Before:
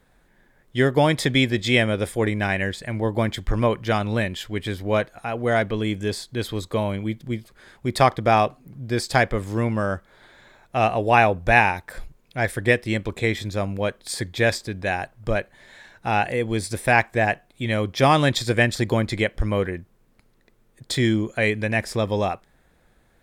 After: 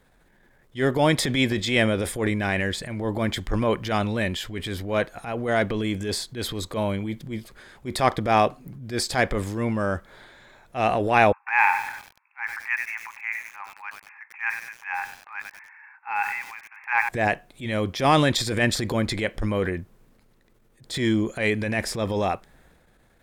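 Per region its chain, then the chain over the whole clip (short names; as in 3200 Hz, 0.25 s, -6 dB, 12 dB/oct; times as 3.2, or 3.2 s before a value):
11.32–17.09 brick-wall FIR band-pass 780–2700 Hz + lo-fi delay 96 ms, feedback 55%, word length 6-bit, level -13.5 dB
whole clip: dynamic EQ 120 Hz, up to -5 dB, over -36 dBFS, Q 1.8; transient shaper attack -9 dB, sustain +5 dB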